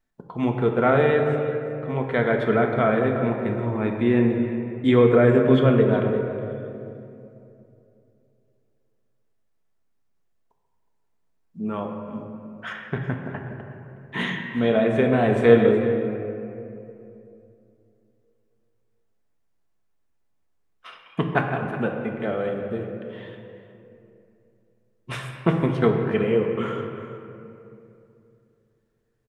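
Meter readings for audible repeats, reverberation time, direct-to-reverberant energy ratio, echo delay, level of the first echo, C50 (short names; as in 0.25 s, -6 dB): 1, 2.8 s, 1.5 dB, 0.366 s, -15.5 dB, 4.0 dB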